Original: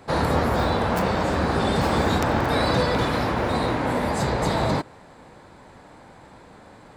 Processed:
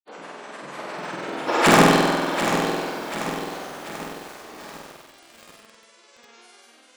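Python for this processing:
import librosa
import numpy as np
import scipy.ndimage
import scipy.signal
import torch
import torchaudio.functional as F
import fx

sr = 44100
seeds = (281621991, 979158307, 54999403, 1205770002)

p1 = fx.doppler_pass(x, sr, speed_mps=50, closest_m=2.6, pass_at_s=1.7)
p2 = scipy.signal.sosfilt(scipy.signal.cheby1(4, 1.0, [290.0, 6000.0], 'bandpass', fs=sr, output='sos'), p1)
p3 = fx.notch(p2, sr, hz=4900.0, q=8.3)
p4 = fx.rider(p3, sr, range_db=4, speed_s=0.5)
p5 = p3 + (p4 * librosa.db_to_amplitude(2.0))
p6 = fx.dmg_buzz(p5, sr, base_hz=400.0, harmonics=15, level_db=-58.0, tilt_db=-2, odd_only=False)
p7 = (np.mod(10.0 ** (9.5 / 20.0) * p6 + 1.0, 2.0) - 1.0) / 10.0 ** (9.5 / 20.0)
p8 = p7 * (1.0 - 0.41 / 2.0 + 0.41 / 2.0 * np.cos(2.0 * np.pi * 1.1 * (np.arange(len(p7)) / sr)))
p9 = fx.granulator(p8, sr, seeds[0], grain_ms=100.0, per_s=20.0, spray_ms=100.0, spread_st=12)
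p10 = p9 + fx.room_flutter(p9, sr, wall_m=8.2, rt60_s=1.4, dry=0)
p11 = fx.echo_crushed(p10, sr, ms=738, feedback_pct=55, bits=7, wet_db=-8.5)
y = p11 * librosa.db_to_amplitude(5.0)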